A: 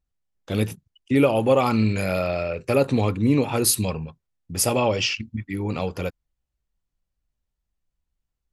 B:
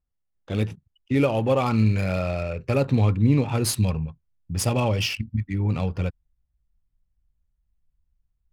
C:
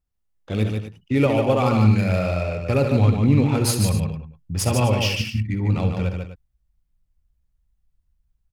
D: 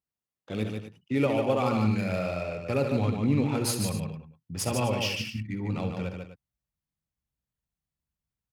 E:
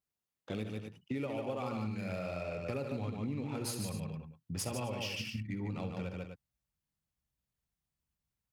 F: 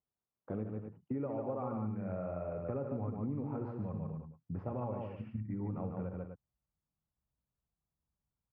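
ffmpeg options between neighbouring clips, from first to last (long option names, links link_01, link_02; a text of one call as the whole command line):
ffmpeg -i in.wav -af "asubboost=boost=3.5:cutoff=190,adynamicsmooth=sensitivity=6:basefreq=3000,volume=-2.5dB" out.wav
ffmpeg -i in.wav -af "aecho=1:1:56|65|147|252:0.188|0.251|0.562|0.2,volume=1.5dB" out.wav
ffmpeg -i in.wav -af "highpass=140,volume=-6dB" out.wav
ffmpeg -i in.wav -af "acompressor=threshold=-35dB:ratio=6" out.wav
ffmpeg -i in.wav -af "lowpass=frequency=1300:width=0.5412,lowpass=frequency=1300:width=1.3066" out.wav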